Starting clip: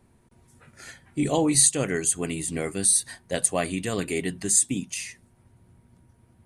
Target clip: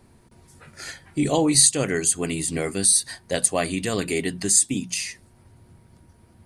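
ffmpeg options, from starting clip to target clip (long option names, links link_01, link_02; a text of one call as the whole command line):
ffmpeg -i in.wav -filter_complex "[0:a]equalizer=frequency=4700:width=2.9:gain=6,bandreject=frequency=60:width_type=h:width=6,bandreject=frequency=120:width_type=h:width=6,bandreject=frequency=180:width_type=h:width=6,bandreject=frequency=240:width_type=h:width=6,asplit=2[link_01][link_02];[link_02]acompressor=threshold=-35dB:ratio=6,volume=-1.5dB[link_03];[link_01][link_03]amix=inputs=2:normalize=0,volume=1dB" out.wav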